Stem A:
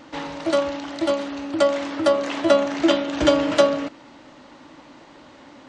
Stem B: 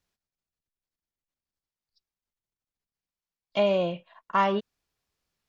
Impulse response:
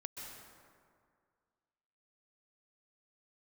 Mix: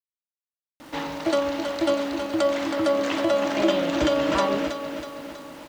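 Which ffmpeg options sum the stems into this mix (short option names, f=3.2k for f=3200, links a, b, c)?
-filter_complex "[0:a]alimiter=limit=-14dB:level=0:latency=1:release=101,adelay=800,volume=0.5dB,asplit=2[a][b];[b]volume=-7.5dB[c];[1:a]volume=-4.5dB[d];[c]aecho=0:1:322|644|966|1288|1610|1932|2254|2576:1|0.54|0.292|0.157|0.085|0.0459|0.0248|0.0134[e];[a][d][e]amix=inputs=3:normalize=0,acrusher=bits=9:dc=4:mix=0:aa=0.000001"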